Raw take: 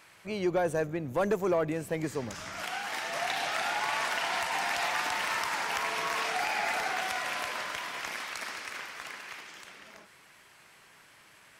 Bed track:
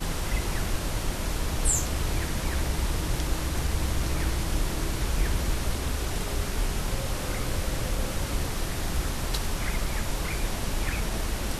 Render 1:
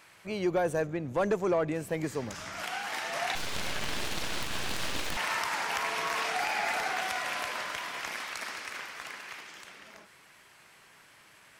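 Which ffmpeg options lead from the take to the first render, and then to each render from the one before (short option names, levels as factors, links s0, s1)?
-filter_complex "[0:a]asettb=1/sr,asplit=3[s0][s1][s2];[s0]atrim=end=0.824[s3];[s1]atrim=start=0.82:end=1.75,asetpts=PTS-STARTPTS,afade=t=in:d=0.004:c=qsin,afade=t=out:st=0.926:d=0.004:c=qsin,lowpass=8800[s4];[s2]atrim=start=1.746[s5];[s3][s4]acrossfade=d=0.004:c1=hsin:c2=qsin[s6];[s6][s5]acrossfade=d=0.004:c1=qsin:c2=hsin,asettb=1/sr,asplit=3[s7][s8][s9];[s7]atrim=end=3.354[s10];[s8]atrim=start=3.35:end=5.17,asetpts=PTS-STARTPTS,afade=t=in:d=0.004:c=qsin,afade=t=out:st=1.816:d=0.004:c=qsin,aeval=exprs='abs(val(0))':c=same[s11];[s9]atrim=start=5.166[s12];[s10][s11]acrossfade=d=0.004:c1=hsin:c2=qsin[s13];[s13][s12]acrossfade=d=0.004:c1=qsin:c2=hsin"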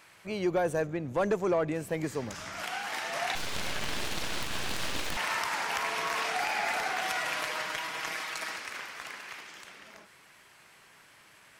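-filter_complex "[0:a]asettb=1/sr,asplit=3[s0][s1][s2];[s0]atrim=end=7.034[s3];[s1]atrim=start=7.03:end=8.57,asetpts=PTS-STARTPTS,afade=t=in:d=0.004:c=qsin,afade=t=out:st=1.536:d=0.004:c=qsin,aecho=1:1:6.3:0.67,atrim=end_sample=67914[s4];[s2]atrim=start=8.566[s5];[s3][s4]acrossfade=d=0.004:c1=hsin:c2=qsin[s6];[s6][s5]acrossfade=d=0.004:c1=qsin:c2=hsin"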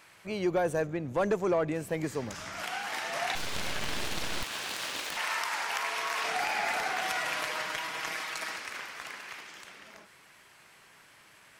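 -filter_complex "[0:a]asettb=1/sr,asplit=3[s0][s1][s2];[s0]atrim=end=4.434[s3];[s1]atrim=start=4.43:end=6.24,asetpts=PTS-STARTPTS,afade=t=in:d=0.004:c=qsin,afade=t=out:st=1.806:d=0.004:c=qsin,highpass=f=600:p=1[s4];[s2]atrim=start=6.236[s5];[s3][s4]acrossfade=d=0.004:c1=hsin:c2=qsin[s6];[s6][s5]acrossfade=d=0.004:c1=qsin:c2=hsin"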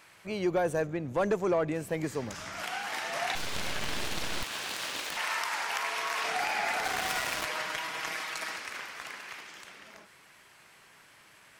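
-filter_complex "[0:a]asettb=1/sr,asplit=3[s0][s1][s2];[s0]atrim=end=6.844[s3];[s1]atrim=start=6.84:end=7.45,asetpts=PTS-STARTPTS,afade=t=in:d=0.004:c=qsin,afade=t=out:st=0.606:d=0.004:c=qsin,acrusher=bits=4:mix=0:aa=0.5[s4];[s2]atrim=start=7.446[s5];[s3][s4]acrossfade=d=0.004:c1=hsin:c2=qsin[s6];[s6][s5]acrossfade=d=0.004:c1=qsin:c2=hsin"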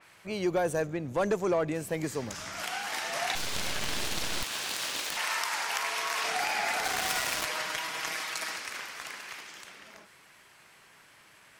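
-af "adynamicequalizer=threshold=0.00447:dfrequency=3600:dqfactor=0.7:tfrequency=3600:tqfactor=0.7:attack=5:release=100:ratio=0.375:range=2.5:mode=boostabove:tftype=highshelf"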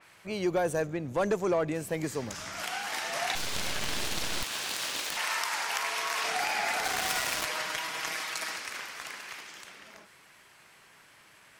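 -af anull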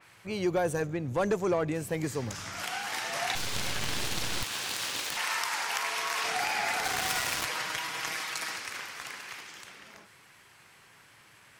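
-af "equalizer=f=110:t=o:w=0.71:g=7.5,bandreject=f=630:w=14"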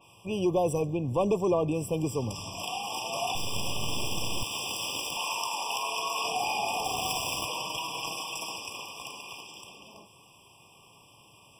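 -filter_complex "[0:a]asplit=2[s0][s1];[s1]asoftclip=type=tanh:threshold=0.0355,volume=0.562[s2];[s0][s2]amix=inputs=2:normalize=0,afftfilt=real='re*eq(mod(floor(b*sr/1024/1200),2),0)':imag='im*eq(mod(floor(b*sr/1024/1200),2),0)':win_size=1024:overlap=0.75"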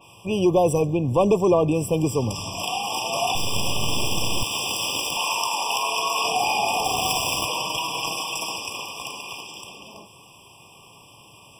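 -af "volume=2.37"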